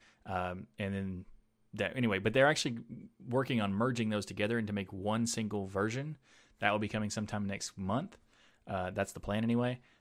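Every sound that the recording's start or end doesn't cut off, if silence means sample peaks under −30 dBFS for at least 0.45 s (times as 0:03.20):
0:01.80–0:02.69
0:03.33–0:06.01
0:06.63–0:08.00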